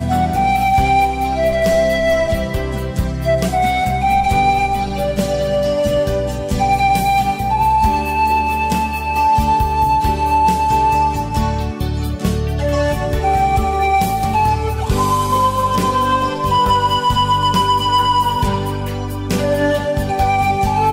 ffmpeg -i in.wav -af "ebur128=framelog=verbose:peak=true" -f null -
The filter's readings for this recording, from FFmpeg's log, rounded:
Integrated loudness:
  I:         -16.1 LUFS
  Threshold: -26.1 LUFS
Loudness range:
  LRA:         1.9 LU
  Threshold: -36.1 LUFS
  LRA low:   -17.0 LUFS
  LRA high:  -15.1 LUFS
True peak:
  Peak:       -4.9 dBFS